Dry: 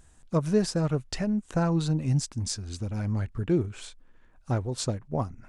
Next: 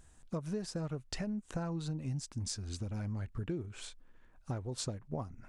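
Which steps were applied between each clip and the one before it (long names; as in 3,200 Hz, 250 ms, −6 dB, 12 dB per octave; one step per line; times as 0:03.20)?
downward compressor 6 to 1, threshold −31 dBFS, peak gain reduction 13 dB
level −3.5 dB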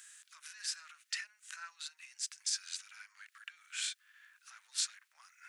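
harmonic and percussive parts rebalanced harmonic +9 dB
brickwall limiter −28.5 dBFS, peak gain reduction 10.5 dB
Butterworth high-pass 1,500 Hz 36 dB per octave
level +7.5 dB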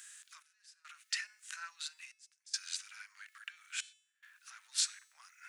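gate pattern "xx..xxxx" 71 BPM −24 dB
low-shelf EQ 440 Hz −10 dB
hum removal 434.4 Hz, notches 39
level +2.5 dB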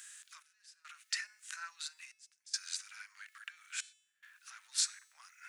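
dynamic equaliser 3,000 Hz, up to −6 dB, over −55 dBFS, Q 2.3
level +1 dB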